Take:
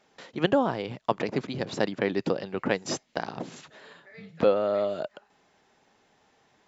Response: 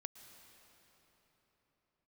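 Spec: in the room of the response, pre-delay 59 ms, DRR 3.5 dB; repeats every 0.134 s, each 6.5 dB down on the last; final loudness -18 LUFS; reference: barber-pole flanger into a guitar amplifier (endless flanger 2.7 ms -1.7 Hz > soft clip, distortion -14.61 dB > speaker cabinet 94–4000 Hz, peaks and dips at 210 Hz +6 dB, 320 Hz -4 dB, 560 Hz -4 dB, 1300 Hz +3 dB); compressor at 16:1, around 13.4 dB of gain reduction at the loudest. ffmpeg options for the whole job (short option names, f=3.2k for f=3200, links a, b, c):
-filter_complex "[0:a]acompressor=threshold=-30dB:ratio=16,aecho=1:1:134|268|402|536|670|804:0.473|0.222|0.105|0.0491|0.0231|0.0109,asplit=2[a][b];[1:a]atrim=start_sample=2205,adelay=59[c];[b][c]afir=irnorm=-1:irlink=0,volume=1dB[d];[a][d]amix=inputs=2:normalize=0,asplit=2[e][f];[f]adelay=2.7,afreqshift=-1.7[g];[e][g]amix=inputs=2:normalize=1,asoftclip=threshold=-29.5dB,highpass=94,equalizer=f=210:t=q:w=4:g=6,equalizer=f=320:t=q:w=4:g=-4,equalizer=f=560:t=q:w=4:g=-4,equalizer=f=1.3k:t=q:w=4:g=3,lowpass=f=4k:w=0.5412,lowpass=f=4k:w=1.3066,volume=22dB"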